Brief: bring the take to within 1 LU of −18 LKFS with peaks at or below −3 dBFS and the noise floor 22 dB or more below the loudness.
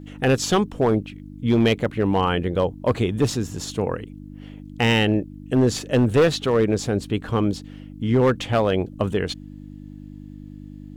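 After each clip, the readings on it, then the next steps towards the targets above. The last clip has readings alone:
share of clipped samples 1.1%; peaks flattened at −11.5 dBFS; mains hum 50 Hz; hum harmonics up to 300 Hz; level of the hum −38 dBFS; integrated loudness −22.0 LKFS; sample peak −11.5 dBFS; target loudness −18.0 LKFS
→ clipped peaks rebuilt −11.5 dBFS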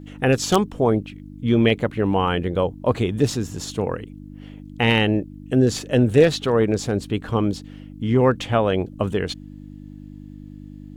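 share of clipped samples 0.0%; mains hum 50 Hz; hum harmonics up to 300 Hz; level of the hum −37 dBFS
→ hum removal 50 Hz, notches 6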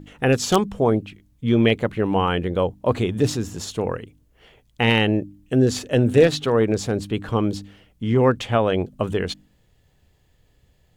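mains hum none found; integrated loudness −21.5 LKFS; sample peak −3.0 dBFS; target loudness −18.0 LKFS
→ level +3.5 dB
brickwall limiter −3 dBFS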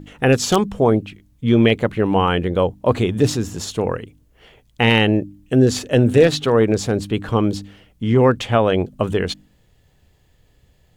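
integrated loudness −18.0 LKFS; sample peak −3.0 dBFS; background noise floor −58 dBFS

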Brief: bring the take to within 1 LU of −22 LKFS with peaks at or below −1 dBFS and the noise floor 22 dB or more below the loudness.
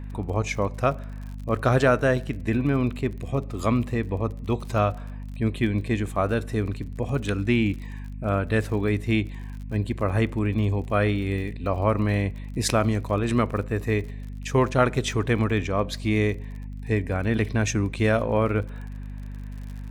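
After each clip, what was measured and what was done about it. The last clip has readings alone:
crackle rate 43 per second; mains hum 50 Hz; hum harmonics up to 250 Hz; level of the hum −32 dBFS; integrated loudness −25.0 LKFS; sample peak −5.5 dBFS; target loudness −22.0 LKFS
→ click removal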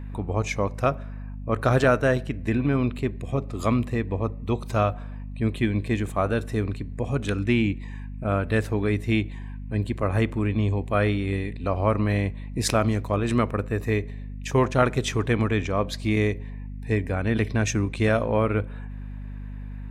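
crackle rate 0 per second; mains hum 50 Hz; hum harmonics up to 250 Hz; level of the hum −32 dBFS
→ mains-hum notches 50/100/150/200/250 Hz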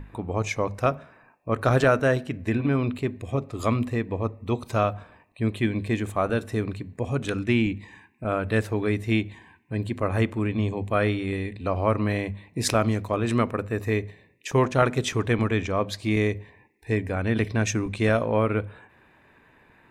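mains hum none found; integrated loudness −26.0 LKFS; sample peak −5.5 dBFS; target loudness −22.0 LKFS
→ level +4 dB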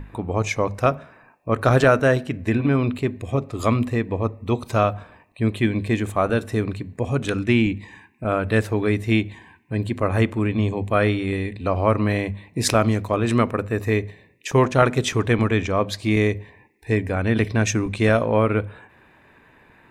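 integrated loudness −22.0 LKFS; sample peak −1.5 dBFS; background noise floor −54 dBFS

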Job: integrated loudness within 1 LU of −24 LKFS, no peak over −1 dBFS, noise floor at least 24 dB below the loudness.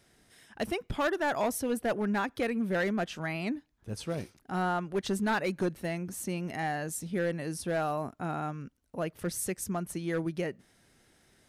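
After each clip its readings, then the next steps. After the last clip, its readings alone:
share of clipped samples 1.5%; peaks flattened at −23.5 dBFS; integrated loudness −33.0 LKFS; sample peak −23.5 dBFS; target loudness −24.0 LKFS
→ clipped peaks rebuilt −23.5 dBFS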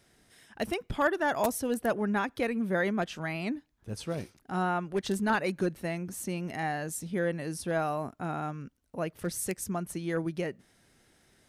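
share of clipped samples 0.0%; integrated loudness −32.0 LKFS; sample peak −14.5 dBFS; target loudness −24.0 LKFS
→ level +8 dB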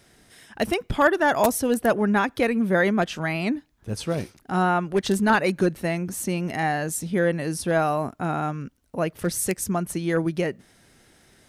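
integrated loudness −24.0 LKFS; sample peak −6.5 dBFS; background noise floor −59 dBFS

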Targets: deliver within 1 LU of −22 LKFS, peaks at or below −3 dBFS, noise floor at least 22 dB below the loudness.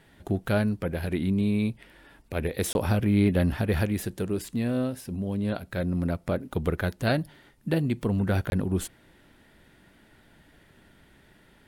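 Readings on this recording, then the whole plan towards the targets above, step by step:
number of dropouts 2; longest dropout 21 ms; integrated loudness −27.5 LKFS; sample peak −11.0 dBFS; target loudness −22.0 LKFS
→ repair the gap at 0:02.73/0:08.50, 21 ms
level +5.5 dB

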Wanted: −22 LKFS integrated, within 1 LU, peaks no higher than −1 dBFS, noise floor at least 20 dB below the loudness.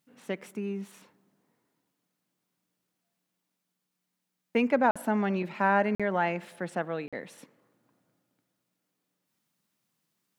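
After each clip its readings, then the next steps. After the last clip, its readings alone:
number of dropouts 3; longest dropout 46 ms; integrated loudness −29.0 LKFS; sample peak −11.0 dBFS; target loudness −22.0 LKFS
→ repair the gap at 0:04.91/0:05.95/0:07.08, 46 ms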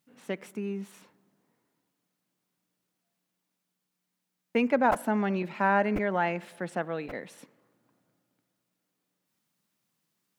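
number of dropouts 0; integrated loudness −29.0 LKFS; sample peak −11.0 dBFS; target loudness −22.0 LKFS
→ level +7 dB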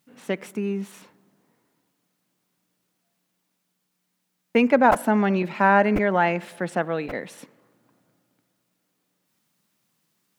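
integrated loudness −22.0 LKFS; sample peak −4.0 dBFS; background noise floor −76 dBFS

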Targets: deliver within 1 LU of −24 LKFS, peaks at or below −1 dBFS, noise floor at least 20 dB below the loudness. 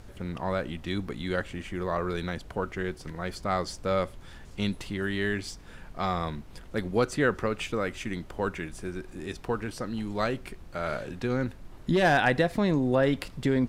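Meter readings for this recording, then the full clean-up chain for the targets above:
background noise floor −47 dBFS; target noise floor −50 dBFS; integrated loudness −30.0 LKFS; sample peak −11.0 dBFS; target loudness −24.0 LKFS
→ noise reduction from a noise print 6 dB
level +6 dB

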